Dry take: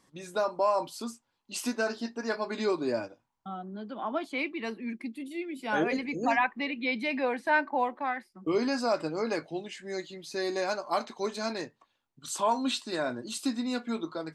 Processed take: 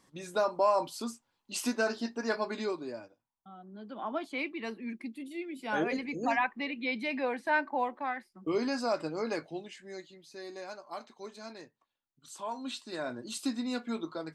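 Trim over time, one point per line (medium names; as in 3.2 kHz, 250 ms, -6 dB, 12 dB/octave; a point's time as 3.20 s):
2.43 s 0 dB
2.98 s -12 dB
3.53 s -12 dB
3.96 s -3 dB
9.46 s -3 dB
10.34 s -12.5 dB
12.36 s -12.5 dB
13.31 s -2.5 dB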